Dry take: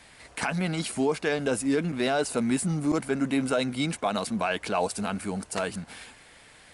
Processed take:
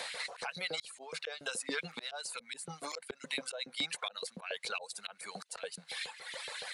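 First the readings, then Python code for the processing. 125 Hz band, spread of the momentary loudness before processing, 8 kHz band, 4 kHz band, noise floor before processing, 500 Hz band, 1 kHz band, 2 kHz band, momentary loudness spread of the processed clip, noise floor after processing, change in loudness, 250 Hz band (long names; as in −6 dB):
−23.5 dB, 7 LU, −7.0 dB, −2.0 dB, −53 dBFS, −16.5 dB, −13.5 dB, −6.5 dB, 8 LU, −64 dBFS, −12.0 dB, −24.0 dB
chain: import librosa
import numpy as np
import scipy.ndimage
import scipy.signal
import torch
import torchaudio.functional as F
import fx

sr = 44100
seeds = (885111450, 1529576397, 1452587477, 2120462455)

y = fx.dereverb_blind(x, sr, rt60_s=1.2)
y = fx.filter_lfo_highpass(y, sr, shape='saw_up', hz=7.1, low_hz=410.0, high_hz=3300.0, q=1.6)
y = fx.graphic_eq_31(y, sr, hz=(160, 315, 500, 4000), db=(9, -9, 10, 9))
y = fx.auto_swell(y, sr, attack_ms=756.0)
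y = fx.band_squash(y, sr, depth_pct=70)
y = y * 10.0 ** (4.0 / 20.0)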